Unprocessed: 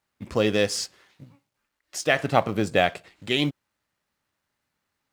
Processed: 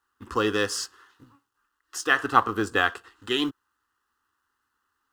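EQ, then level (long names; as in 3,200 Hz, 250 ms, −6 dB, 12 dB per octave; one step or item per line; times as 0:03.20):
flat-topped bell 1,800 Hz +11 dB
phaser with its sweep stopped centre 610 Hz, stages 6
0.0 dB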